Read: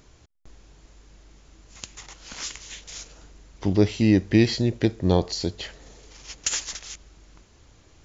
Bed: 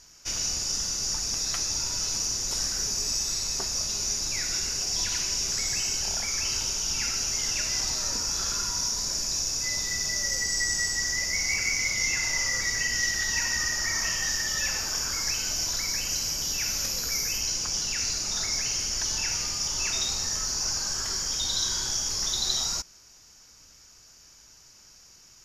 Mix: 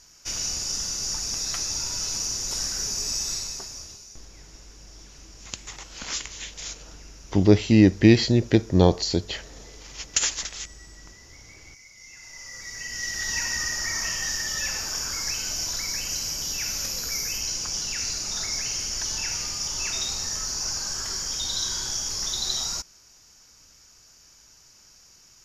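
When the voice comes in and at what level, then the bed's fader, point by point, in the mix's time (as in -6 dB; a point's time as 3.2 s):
3.70 s, +3.0 dB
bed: 3.34 s 0 dB
4.3 s -23 dB
11.91 s -23 dB
13.3 s -0.5 dB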